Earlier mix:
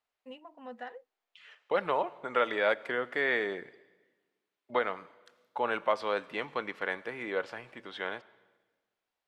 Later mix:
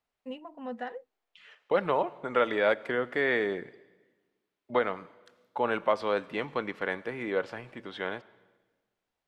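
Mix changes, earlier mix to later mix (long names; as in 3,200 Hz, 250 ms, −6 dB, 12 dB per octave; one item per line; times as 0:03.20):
first voice +3.0 dB
master: add low-shelf EQ 370 Hz +9.5 dB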